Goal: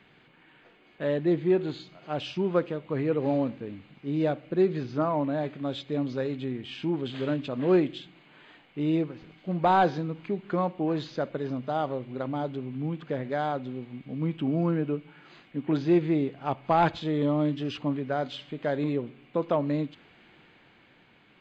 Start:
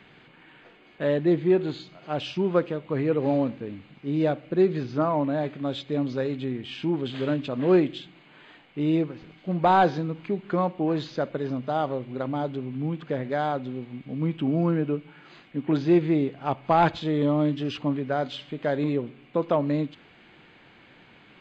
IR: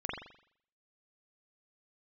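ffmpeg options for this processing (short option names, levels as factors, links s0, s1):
-af "dynaudnorm=f=150:g=13:m=1.41,volume=0.531"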